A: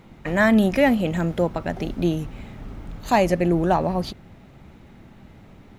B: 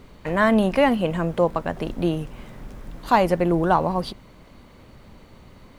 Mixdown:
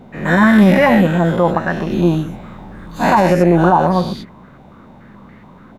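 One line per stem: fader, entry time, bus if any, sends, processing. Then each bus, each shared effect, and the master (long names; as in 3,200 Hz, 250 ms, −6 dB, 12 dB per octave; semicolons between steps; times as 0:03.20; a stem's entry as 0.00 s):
−0.5 dB, 0.00 s, no send, every bin's largest magnitude spread in time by 240 ms; hollow resonant body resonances 200/1,500/3,600 Hz, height 9 dB, ringing for 20 ms; expander for the loud parts 1.5 to 1, over −17 dBFS
+2.5 dB, 5.4 ms, polarity flipped, no send, high-pass filter 150 Hz 24 dB per octave; low-pass on a step sequencer 7 Hz 770–1,900 Hz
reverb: not used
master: brickwall limiter −2.5 dBFS, peak gain reduction 9.5 dB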